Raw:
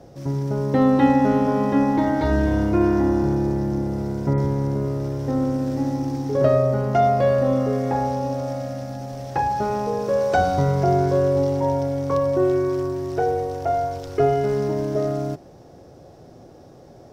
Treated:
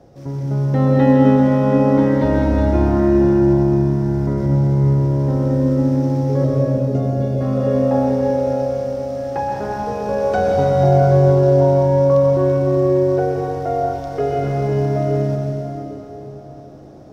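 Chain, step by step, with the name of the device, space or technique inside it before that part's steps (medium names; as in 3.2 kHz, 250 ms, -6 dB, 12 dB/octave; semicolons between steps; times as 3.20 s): 6.44–7.41 s: FFT filter 470 Hz 0 dB, 840 Hz -23 dB, 7 kHz -2 dB; swimming-pool hall (reverberation RT60 3.9 s, pre-delay 117 ms, DRR -2.5 dB; treble shelf 4.6 kHz -5 dB); trim -2 dB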